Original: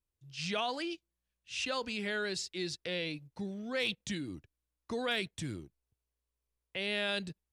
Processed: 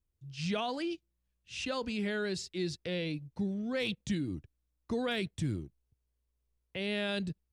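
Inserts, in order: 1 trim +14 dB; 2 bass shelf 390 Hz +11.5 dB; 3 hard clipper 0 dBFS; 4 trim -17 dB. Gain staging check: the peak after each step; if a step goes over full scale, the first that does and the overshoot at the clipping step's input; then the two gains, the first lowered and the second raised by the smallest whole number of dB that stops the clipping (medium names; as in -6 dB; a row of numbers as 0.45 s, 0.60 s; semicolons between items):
-8.0 dBFS, -5.5 dBFS, -5.5 dBFS, -22.5 dBFS; nothing clips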